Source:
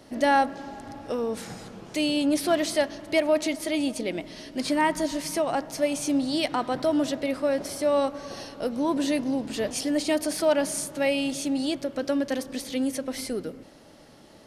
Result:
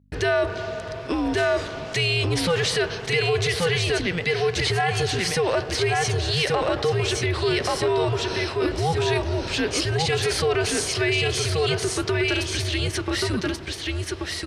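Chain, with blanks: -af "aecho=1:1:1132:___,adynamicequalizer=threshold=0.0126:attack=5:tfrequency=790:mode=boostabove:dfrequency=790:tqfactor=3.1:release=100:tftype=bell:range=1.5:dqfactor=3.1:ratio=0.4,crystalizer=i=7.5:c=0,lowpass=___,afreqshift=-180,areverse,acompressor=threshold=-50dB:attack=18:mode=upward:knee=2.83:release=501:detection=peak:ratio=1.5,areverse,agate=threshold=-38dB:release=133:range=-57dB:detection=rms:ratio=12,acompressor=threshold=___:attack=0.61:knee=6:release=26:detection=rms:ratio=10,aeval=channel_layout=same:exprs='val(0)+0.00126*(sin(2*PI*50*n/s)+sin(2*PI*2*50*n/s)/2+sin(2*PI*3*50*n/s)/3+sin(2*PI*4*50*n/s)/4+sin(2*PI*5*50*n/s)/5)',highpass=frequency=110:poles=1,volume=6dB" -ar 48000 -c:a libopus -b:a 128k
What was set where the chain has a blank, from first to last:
0.631, 2.8k, -22dB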